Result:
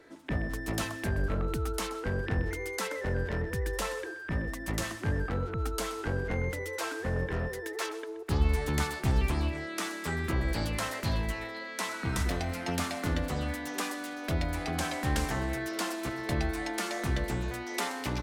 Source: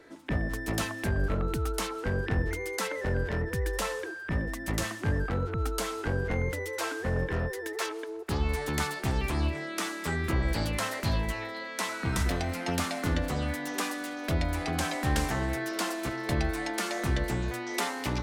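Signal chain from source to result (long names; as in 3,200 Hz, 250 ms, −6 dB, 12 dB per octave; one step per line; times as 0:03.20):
0:08.30–0:09.34: low-shelf EQ 180 Hz +6.5 dB
single-tap delay 127 ms −15.5 dB
level −2 dB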